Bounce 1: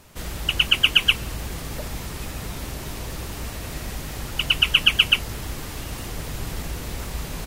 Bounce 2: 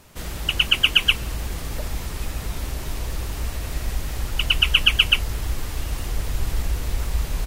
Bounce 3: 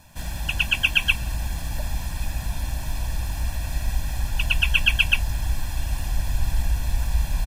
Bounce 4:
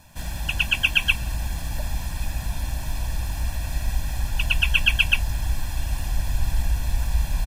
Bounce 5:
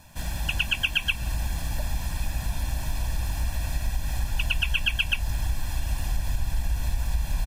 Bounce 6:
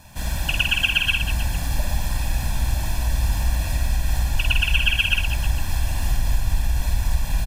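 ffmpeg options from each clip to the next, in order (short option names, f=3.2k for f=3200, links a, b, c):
-af "asubboost=boost=3.5:cutoff=78"
-af "aecho=1:1:1.2:0.93,volume=-4dB"
-af anull
-af "acompressor=threshold=-21dB:ratio=4"
-af "aecho=1:1:50|115|199.5|309.4|452.2:0.631|0.398|0.251|0.158|0.1,volume=3.5dB"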